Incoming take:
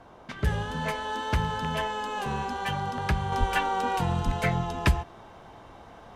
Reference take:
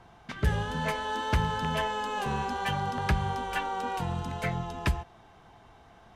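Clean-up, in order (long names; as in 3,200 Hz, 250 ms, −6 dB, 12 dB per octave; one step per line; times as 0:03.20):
0:03.39–0:03.51: high-pass filter 140 Hz 24 dB per octave
0:04.25–0:04.37: high-pass filter 140 Hz 24 dB per octave
noise reduction from a noise print 7 dB
0:03.32: level correction −5 dB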